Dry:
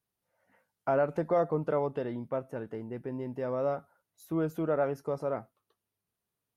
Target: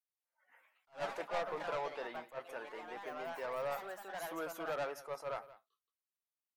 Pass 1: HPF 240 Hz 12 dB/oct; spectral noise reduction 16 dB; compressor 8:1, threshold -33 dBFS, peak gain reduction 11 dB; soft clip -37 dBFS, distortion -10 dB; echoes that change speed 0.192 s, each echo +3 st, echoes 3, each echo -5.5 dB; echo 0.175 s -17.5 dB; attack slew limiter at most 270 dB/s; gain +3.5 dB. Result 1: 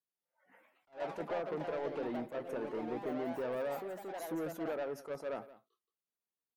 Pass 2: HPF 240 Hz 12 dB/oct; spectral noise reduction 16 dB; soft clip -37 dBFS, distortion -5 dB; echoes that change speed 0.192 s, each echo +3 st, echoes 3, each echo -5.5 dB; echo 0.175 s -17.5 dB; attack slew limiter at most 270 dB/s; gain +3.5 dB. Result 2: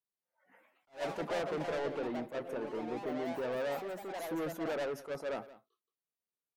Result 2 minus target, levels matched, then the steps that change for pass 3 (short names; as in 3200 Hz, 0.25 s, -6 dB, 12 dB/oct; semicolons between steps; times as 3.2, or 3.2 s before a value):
250 Hz band +8.5 dB
change: HPF 920 Hz 12 dB/oct